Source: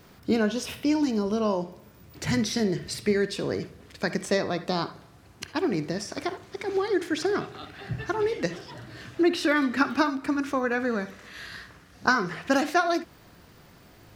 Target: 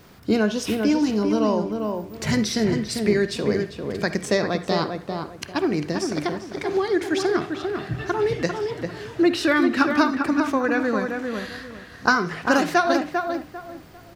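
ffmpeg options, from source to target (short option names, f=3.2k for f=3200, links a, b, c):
-filter_complex "[0:a]asplit=2[a][b];[b]adelay=397,lowpass=f=1.8k:p=1,volume=-4.5dB,asplit=2[c][d];[d]adelay=397,lowpass=f=1.8k:p=1,volume=0.27,asplit=2[e][f];[f]adelay=397,lowpass=f=1.8k:p=1,volume=0.27,asplit=2[g][h];[h]adelay=397,lowpass=f=1.8k:p=1,volume=0.27[i];[a][c][e][g][i]amix=inputs=5:normalize=0,volume=3.5dB"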